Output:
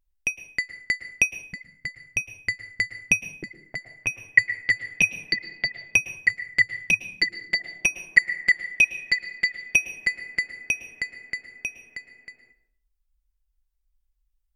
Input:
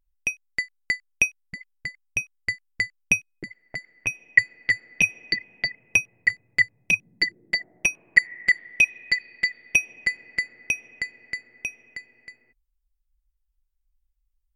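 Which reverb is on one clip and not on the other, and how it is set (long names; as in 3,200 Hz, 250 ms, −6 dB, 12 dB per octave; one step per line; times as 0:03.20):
dense smooth reverb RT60 0.6 s, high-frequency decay 0.7×, pre-delay 100 ms, DRR 12.5 dB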